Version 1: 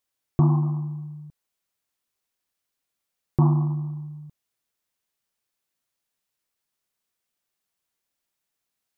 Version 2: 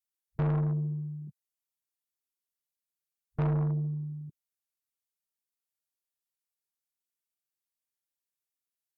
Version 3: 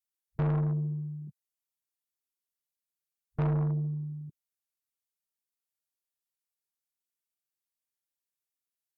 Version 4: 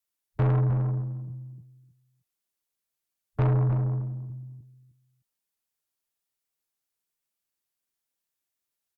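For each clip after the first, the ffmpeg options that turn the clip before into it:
-af "afwtdn=0.0126,aemphasis=mode=production:type=cd,asoftclip=type=tanh:threshold=0.0562"
-af anull
-filter_complex "[0:a]afreqshift=-22,asplit=2[s0][s1];[s1]adelay=307,lowpass=f=1000:p=1,volume=0.531,asplit=2[s2][s3];[s3]adelay=307,lowpass=f=1000:p=1,volume=0.18,asplit=2[s4][s5];[s5]adelay=307,lowpass=f=1000:p=1,volume=0.18[s6];[s2][s4][s6]amix=inputs=3:normalize=0[s7];[s0][s7]amix=inputs=2:normalize=0,volume=1.78"

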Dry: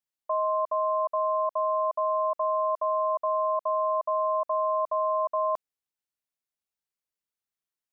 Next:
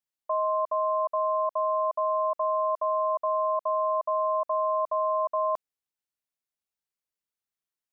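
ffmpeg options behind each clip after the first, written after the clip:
-af anull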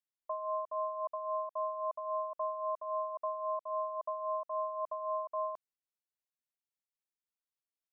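-af "tremolo=f=3.7:d=0.56,volume=0.422"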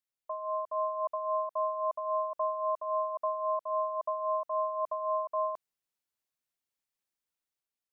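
-af "dynaudnorm=f=170:g=7:m=1.68"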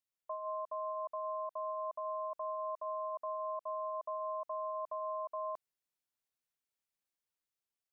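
-af "alimiter=level_in=1.78:limit=0.0631:level=0:latency=1:release=39,volume=0.562,volume=0.668"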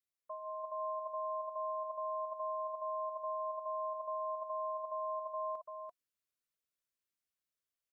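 -af "asuperstop=centerf=830:order=12:qfactor=3.1,aecho=1:1:340:0.668,volume=0.668"

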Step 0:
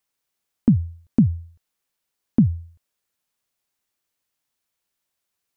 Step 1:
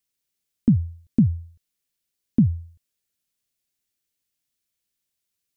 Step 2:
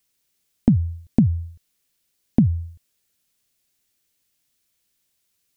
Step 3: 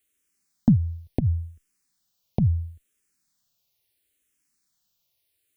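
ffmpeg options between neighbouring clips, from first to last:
-af "equalizer=f=940:t=o:w=1.8:g=-12"
-af "acompressor=threshold=0.0708:ratio=4,volume=2.82"
-filter_complex "[0:a]asplit=2[s0][s1];[s1]afreqshift=-0.73[s2];[s0][s2]amix=inputs=2:normalize=1"

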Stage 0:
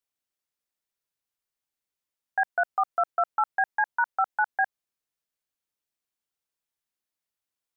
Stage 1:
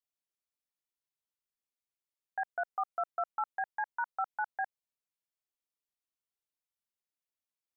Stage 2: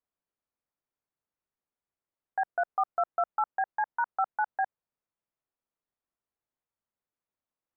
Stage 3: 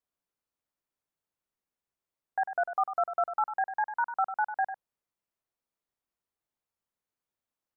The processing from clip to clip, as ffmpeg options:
-af "equalizer=f=1600:w=4.5:g=-4,volume=0.376"
-af "lowpass=1400,volume=2.24"
-af "aecho=1:1:98:0.316"

